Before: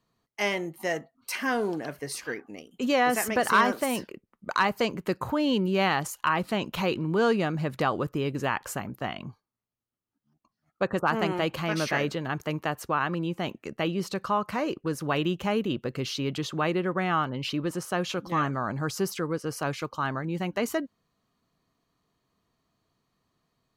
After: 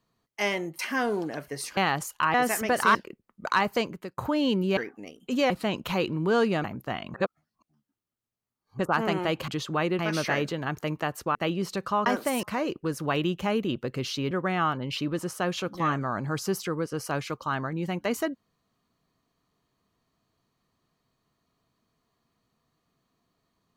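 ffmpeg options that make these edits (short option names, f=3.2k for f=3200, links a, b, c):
-filter_complex "[0:a]asplit=17[a][b][c][d][e][f][g][h][i][j][k][l][m][n][o][p][q];[a]atrim=end=0.792[r];[b]atrim=start=1.298:end=2.282[s];[c]atrim=start=5.808:end=6.382[t];[d]atrim=start=3.008:end=3.622[u];[e]atrim=start=3.988:end=5.22,asetpts=PTS-STARTPTS,afade=t=out:st=0.832:d=0.4[v];[f]atrim=start=5.22:end=5.812,asetpts=PTS-STARTPTS,afade=t=in:d=0.004:c=hsin[w];[g]atrim=start=2.278:end=3.012[x];[h]atrim=start=6.378:end=7.522[y];[i]atrim=start=8.778:end=9.282[z];[j]atrim=start=9.278:end=10.932,asetpts=PTS-STARTPTS,areverse[aa];[k]atrim=start=10.928:end=11.622[ab];[l]atrim=start=16.318:end=16.832[ac];[m]atrim=start=11.618:end=12.982[ad];[n]atrim=start=13.728:end=14.442[ae];[o]atrim=start=3.618:end=3.992[af];[p]atrim=start=14.438:end=16.322[ag];[q]atrim=start=16.828[ah];[r][s]acrossfade=d=0.004:c1=hsin:c2=hsin[ai];[ai][t]acrossfade=d=0.004:c1=hsin:c2=hsin[aj];[aj][u]acrossfade=d=0.004:c1=hsin:c2=hsin[ak];[v][w]concat=n=2:v=0:a=1[al];[ak][al]acrossfade=d=0.004:c1=hsin:c2=hsin[am];[am][x]acrossfade=d=0.004:c1=hsin:c2=hsin[an];[an][y]acrossfade=d=0.004:c1=hsin:c2=hsin[ao];[ao][z]acrossfade=d=0.004:c1=hsin:c2=hsin[ap];[ap][aa]acrossfade=d=0.004:c1=hsin:c2=hsin[aq];[aq][ab]acrossfade=d=0.004:c1=hsin:c2=hsin[ar];[ar][ac]acrossfade=d=0.004:c1=hsin:c2=hsin[as];[as][ad]acrossfade=d=0.004:c1=hsin:c2=hsin[at];[at][ae]acrossfade=d=0.004:c1=hsin:c2=hsin[au];[au][af]acrossfade=d=0.004:c1=hsin:c2=hsin[av];[av][ag]acrossfade=d=0.004:c1=hsin:c2=hsin[aw];[aw][ah]acrossfade=d=0.004:c1=hsin:c2=hsin"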